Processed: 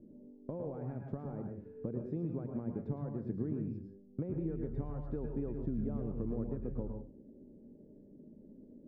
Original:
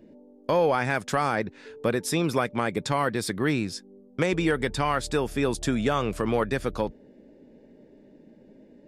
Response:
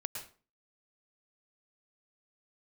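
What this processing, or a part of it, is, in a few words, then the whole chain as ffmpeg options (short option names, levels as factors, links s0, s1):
television next door: -filter_complex "[0:a]asettb=1/sr,asplit=3[s0][s1][s2];[s0]atrim=end=5.034[s3];[s1]atrim=start=5.03:end=5.52,asetpts=PTS-STARTPTS,afade=t=in:d=0.004:c=qsin,afade=t=out:st=0.486:d=0.004:c=qsin,equalizer=f=1400:w=0.36:g=6[s4];[s2]atrim=start=5.516[s5];[s3][s4]acrossfade=d=0.004:c1=hsin:c2=qsin[s6];[s6][s5]acrossfade=d=0.004:c1=qsin:c2=hsin,acompressor=threshold=0.0316:ratio=5,lowpass=320[s7];[1:a]atrim=start_sample=2205[s8];[s7][s8]afir=irnorm=-1:irlink=0"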